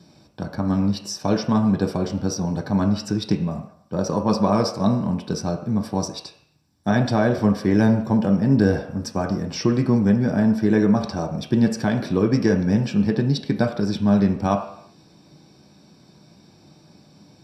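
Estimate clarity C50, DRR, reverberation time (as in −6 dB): 9.0 dB, 2.5 dB, non-exponential decay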